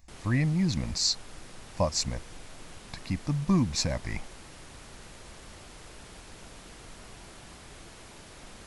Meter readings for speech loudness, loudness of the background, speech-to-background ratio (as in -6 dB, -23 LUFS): -29.0 LUFS, -48.0 LUFS, 19.0 dB